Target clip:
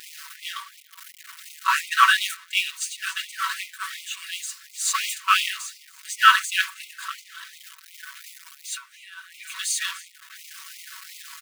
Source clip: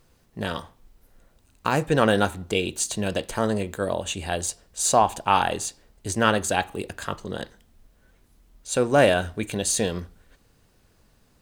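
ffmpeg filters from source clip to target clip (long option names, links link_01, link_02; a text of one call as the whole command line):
ffmpeg -i in.wav -filter_complex "[0:a]aeval=exprs='val(0)+0.5*0.0631*sgn(val(0))':channel_layout=same,highshelf=frequency=3700:gain=-4.5,aecho=1:1:288:0.112,asettb=1/sr,asplit=3[link_01][link_02][link_03];[link_01]atrim=end=7.234[link_04];[link_02]atrim=start=7.23:end=9.44,asetpts=PTS-STARTPTS,afade=type=in:duration=0.004:curve=qsin,afade=type=out:start_time=2.206:duration=0.004:curve=qsin,acompressor=threshold=-24dB:ratio=10[link_05];[link_03]atrim=start=9.436[link_06];[link_04][link_05]acrossfade=duration=0.004:curve1=hsin:curve2=qsin[link_07];[link_07][link_06]acrossfade=duration=0.004:curve1=qsin:curve2=hsin,agate=range=-33dB:threshold=-16dB:ratio=3:detection=peak,acompressor=mode=upward:threshold=-34dB:ratio=2.5,aecho=1:1:5.3:0.98,afftfilt=real='re*gte(b*sr/1024,940*pow(2000/940,0.5+0.5*sin(2*PI*2.8*pts/sr)))':imag='im*gte(b*sr/1024,940*pow(2000/940,0.5+0.5*sin(2*PI*2.8*pts/sr)))':win_size=1024:overlap=0.75,volume=6.5dB" out.wav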